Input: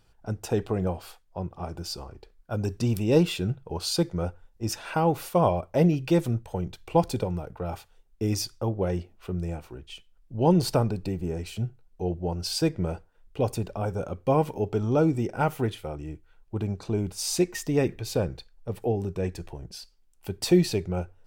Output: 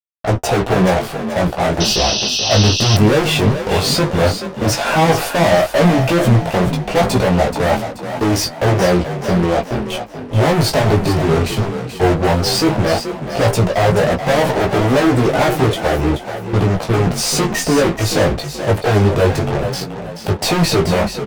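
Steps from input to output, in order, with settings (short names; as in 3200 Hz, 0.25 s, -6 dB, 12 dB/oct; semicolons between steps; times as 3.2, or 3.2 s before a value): bell 650 Hz +11 dB 0.7 oct; fuzz box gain 38 dB, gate -42 dBFS; chorus 0.13 Hz, delay 15.5 ms, depth 4 ms; high shelf 4500 Hz -6 dB; flange 0.31 Hz, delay 8.7 ms, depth 4.5 ms, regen -38%; on a send: frequency-shifting echo 0.43 s, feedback 40%, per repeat +37 Hz, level -9.5 dB; on the sum: painted sound noise, 1.8–2.97, 2500–6200 Hz -27 dBFS; gain +8 dB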